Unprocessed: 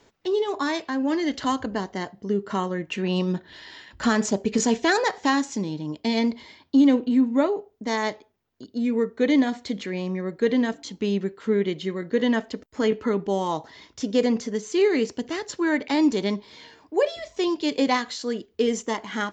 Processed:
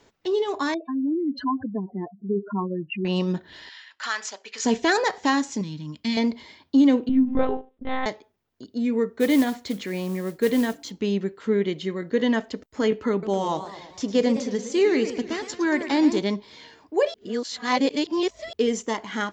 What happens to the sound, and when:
0:00.74–0:03.05: expanding power law on the bin magnitudes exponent 3.6
0:03.69–0:04.65: flat-topped band-pass 2,800 Hz, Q 0.54
0:05.61–0:06.17: flat-topped bell 540 Hz −13.5 dB
0:07.09–0:08.06: one-pitch LPC vocoder at 8 kHz 260 Hz
0:09.19–0:10.91: noise that follows the level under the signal 21 dB
0:13.11–0:16.19: feedback echo with a swinging delay time 111 ms, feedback 57%, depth 184 cents, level −11.5 dB
0:17.14–0:18.53: reverse

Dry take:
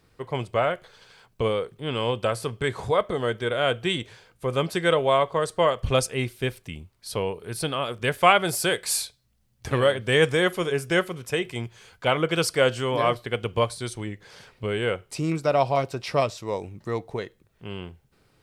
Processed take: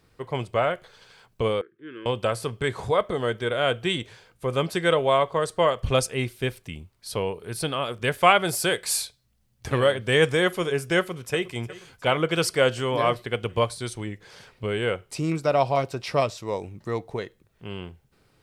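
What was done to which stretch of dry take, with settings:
0:01.61–0:02.06: pair of resonant band-passes 740 Hz, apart 2.3 octaves
0:10.97–0:11.54: delay throw 360 ms, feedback 70%, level −18 dB

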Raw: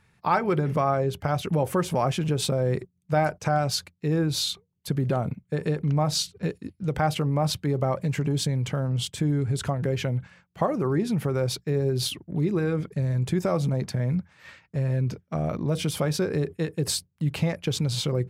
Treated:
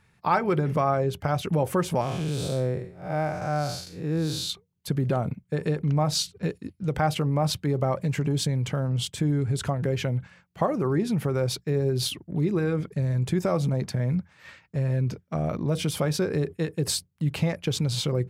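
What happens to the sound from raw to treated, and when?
0:02.01–0:04.50: spectrum smeared in time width 204 ms

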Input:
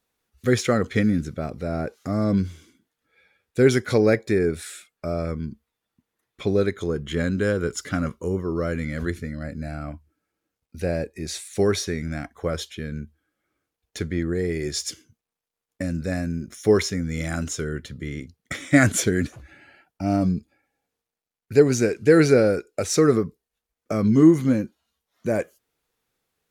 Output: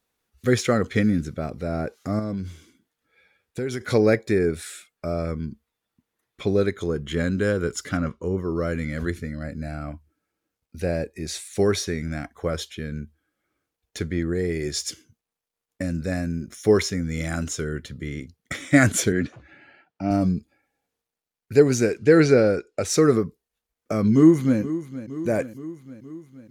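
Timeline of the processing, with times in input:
0:02.19–0:03.81: downward compressor 4 to 1, threshold −26 dBFS
0:07.97–0:08.38: high-frequency loss of the air 95 metres
0:19.12–0:20.11: band-pass filter 110–3,900 Hz
0:21.98–0:22.85: low-pass filter 6,700 Hz
0:24.13–0:24.59: delay throw 470 ms, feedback 65%, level −14 dB

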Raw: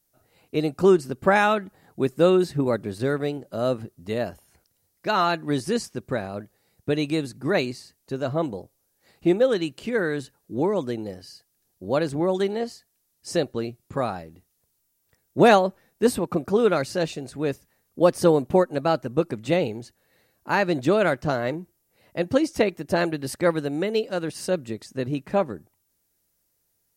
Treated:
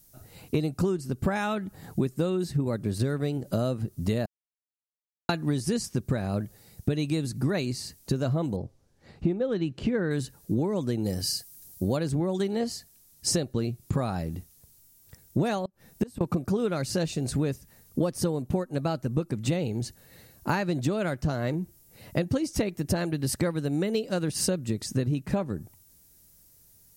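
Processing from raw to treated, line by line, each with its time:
0:04.26–0:05.29: silence
0:08.56–0:10.11: head-to-tape spacing loss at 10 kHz 23 dB
0:11.04–0:11.97: high-shelf EQ 5,700 Hz +10 dB
0:15.65–0:16.21: gate with flip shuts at −16 dBFS, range −28 dB
whole clip: bass and treble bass +11 dB, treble +7 dB; downward compressor 16 to 1, threshold −30 dBFS; level +7 dB

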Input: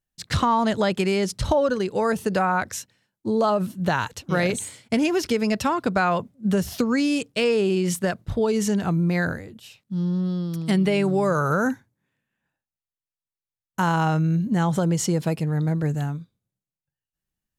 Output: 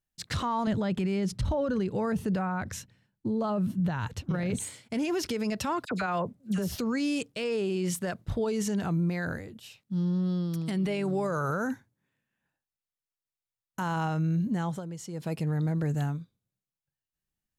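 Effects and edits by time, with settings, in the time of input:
0:00.67–0:04.60: bass and treble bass +12 dB, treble −6 dB
0:05.85–0:06.76: all-pass dispersion lows, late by 57 ms, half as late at 1,800 Hz
0:14.49–0:15.45: duck −14 dB, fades 0.33 s
whole clip: brickwall limiter −19 dBFS; level −3 dB

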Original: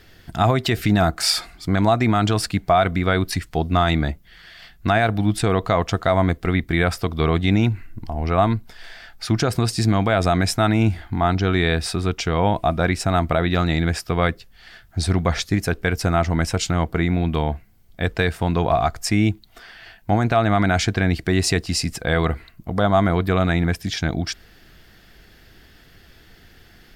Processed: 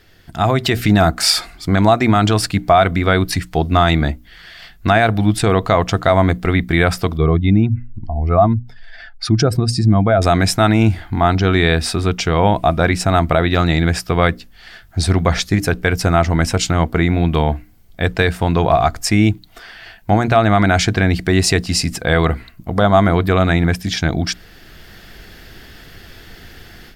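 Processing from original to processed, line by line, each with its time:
0:07.17–0:10.22: expanding power law on the bin magnitudes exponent 1.6
whole clip: automatic gain control; mains-hum notches 60/120/180/240/300 Hz; level −1 dB

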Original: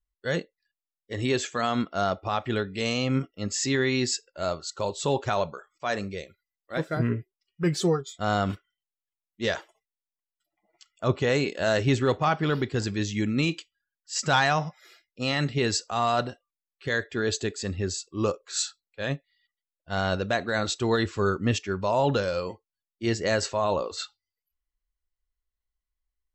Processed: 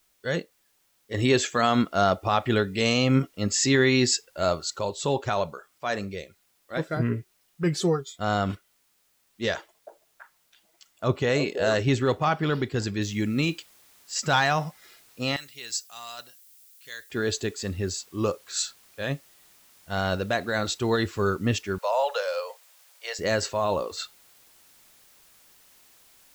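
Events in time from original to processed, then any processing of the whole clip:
0:01.14–0:04.79: clip gain +4.5 dB
0:09.54–0:11.75: echo through a band-pass that steps 328 ms, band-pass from 520 Hz, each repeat 1.4 octaves, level −4 dB
0:13.02: noise floor change −68 dB −57 dB
0:15.36–0:17.10: first-order pre-emphasis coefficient 0.97
0:21.78–0:23.19: Butterworth high-pass 480 Hz 72 dB per octave

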